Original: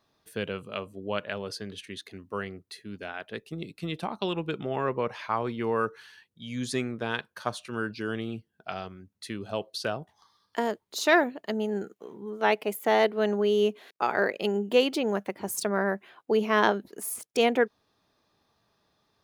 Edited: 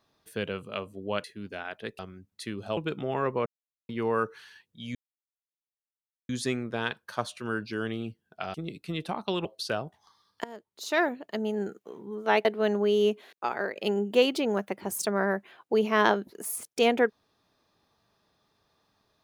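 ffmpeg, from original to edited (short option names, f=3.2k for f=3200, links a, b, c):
-filter_complex "[0:a]asplit=12[a][b][c][d][e][f][g][h][i][j][k][l];[a]atrim=end=1.242[m];[b]atrim=start=2.728:end=3.482[n];[c]atrim=start=8.818:end=9.602[o];[d]atrim=start=4.388:end=5.08,asetpts=PTS-STARTPTS,afade=t=out:st=0.688:d=0.004:c=hsin[p];[e]atrim=start=5.08:end=5.51,asetpts=PTS-STARTPTS,volume=0[q];[f]atrim=start=5.51:end=6.57,asetpts=PTS-STARTPTS,afade=t=in:d=0.004:c=hsin,afade=t=out:st=1.056:d=0.004:c=hsin,apad=pad_dur=1.34[r];[g]atrim=start=6.57:end=8.822,asetpts=PTS-STARTPTS,afade=t=in:d=0.004:c=hsin[s];[h]atrim=start=3.478:end=4.392[t];[i]atrim=start=9.598:end=10.59,asetpts=PTS-STARTPTS,afade=t=out:st=0.988:d=0.004:c=hsin:silence=0.0944061[u];[j]atrim=start=10.59:end=12.602,asetpts=PTS-STARTPTS,afade=t=in:d=1.47:c=qsin:silence=0.0944061[v];[k]atrim=start=13.028:end=14.34,asetpts=PTS-STARTPTS,afade=t=out:st=0.662:d=0.65:silence=0.375837[w];[l]atrim=start=14.34,asetpts=PTS-STARTPTS,afade=t=in:d=0.004:c=hsin:silence=0.375837[x];[m][n]acrossfade=d=0.004:c1=hsin:c2=hsin[y];[y][o]acrossfade=d=0.004:c1=hsin:c2=hsin[z];[p][q][r][s]concat=n=4:v=0:a=1[aa];[z][aa]acrossfade=d=0.004:c1=hsin:c2=hsin[ab];[ab][t]acrossfade=d=0.004:c1=hsin:c2=hsin[ac];[u][v]concat=n=2:v=0:a=1[ad];[ac][ad]acrossfade=d=0.004:c1=hsin:c2=hsin[ae];[w][x]concat=n=2:v=0:a=1[af];[ae][af]acrossfade=d=0.004:c1=hsin:c2=hsin"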